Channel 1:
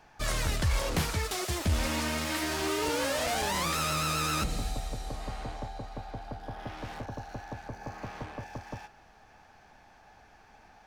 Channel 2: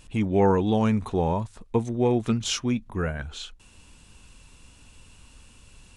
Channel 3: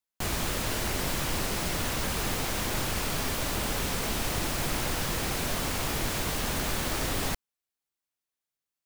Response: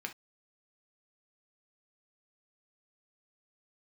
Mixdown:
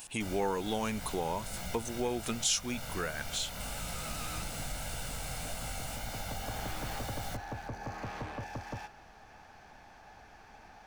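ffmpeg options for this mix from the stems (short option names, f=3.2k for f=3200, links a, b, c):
-filter_complex "[0:a]asoftclip=type=tanh:threshold=-33.5dB,volume=2.5dB[a];[1:a]aemphasis=mode=production:type=riaa,volume=-0.5dB,asplit=2[b][c];[2:a]aecho=1:1:1.4:0.89,flanger=delay=17:depth=4.9:speed=1.8,volume=-9.5dB,asplit=2[d][e];[e]volume=-23.5dB[f];[c]apad=whole_len=479306[g];[a][g]sidechaincompress=threshold=-51dB:ratio=8:attack=16:release=731[h];[f]aecho=0:1:328:1[i];[h][b][d][i]amix=inputs=4:normalize=0,acompressor=threshold=-34dB:ratio=2"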